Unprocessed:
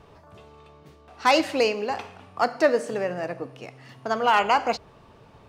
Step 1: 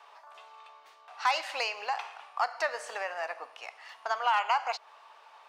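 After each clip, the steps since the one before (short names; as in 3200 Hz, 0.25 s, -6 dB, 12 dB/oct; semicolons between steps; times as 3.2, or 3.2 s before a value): Chebyshev high-pass 830 Hz, order 3; compressor 2:1, threshold -34 dBFS, peak gain reduction 10 dB; high shelf 6900 Hz -8 dB; gain +3.5 dB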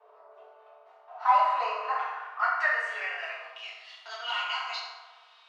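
brick-wall FIR high-pass 260 Hz; reverb RT60 1.4 s, pre-delay 4 ms, DRR -10 dB; band-pass sweep 480 Hz -> 3600 Hz, 0.32–3.85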